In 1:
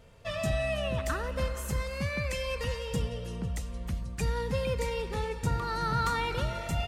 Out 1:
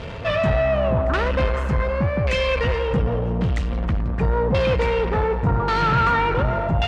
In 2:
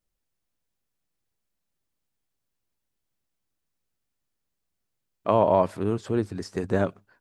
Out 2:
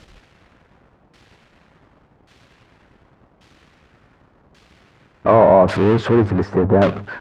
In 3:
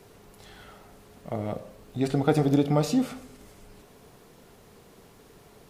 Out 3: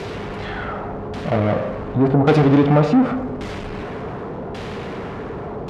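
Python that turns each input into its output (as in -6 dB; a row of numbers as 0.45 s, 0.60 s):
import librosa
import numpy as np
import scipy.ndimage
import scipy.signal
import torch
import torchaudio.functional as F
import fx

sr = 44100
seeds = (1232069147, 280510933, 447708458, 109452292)

y = fx.power_curve(x, sr, exponent=0.5)
y = fx.filter_lfo_lowpass(y, sr, shape='saw_down', hz=0.88, low_hz=870.0, high_hz=3800.0, q=0.91)
y = scipy.signal.sosfilt(scipy.signal.butter(2, 40.0, 'highpass', fs=sr, output='sos'), y)
y = y * 10.0 ** (-20 / 20.0) / np.sqrt(np.mean(np.square(y)))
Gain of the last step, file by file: +5.5 dB, +4.5 dB, +3.5 dB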